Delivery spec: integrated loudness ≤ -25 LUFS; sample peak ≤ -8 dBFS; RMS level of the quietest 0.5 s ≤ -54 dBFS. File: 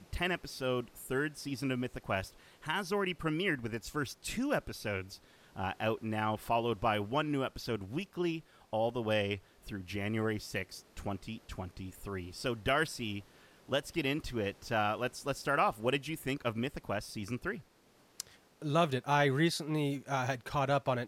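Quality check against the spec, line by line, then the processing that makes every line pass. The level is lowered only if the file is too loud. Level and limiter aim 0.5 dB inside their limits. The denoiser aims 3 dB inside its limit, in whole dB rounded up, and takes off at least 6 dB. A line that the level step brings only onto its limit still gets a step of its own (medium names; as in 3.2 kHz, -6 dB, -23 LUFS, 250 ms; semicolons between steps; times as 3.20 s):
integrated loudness -35.0 LUFS: pass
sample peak -15.5 dBFS: pass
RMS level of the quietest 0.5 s -65 dBFS: pass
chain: none needed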